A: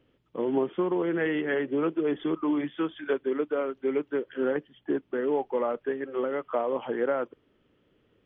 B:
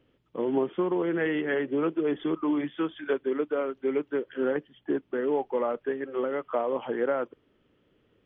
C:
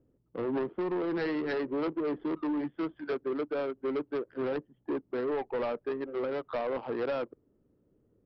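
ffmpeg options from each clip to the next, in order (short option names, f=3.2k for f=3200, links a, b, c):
-af anull
-af "adynamicsmooth=sensitivity=3:basefreq=600,aresample=11025,asoftclip=type=tanh:threshold=-27dB,aresample=44100"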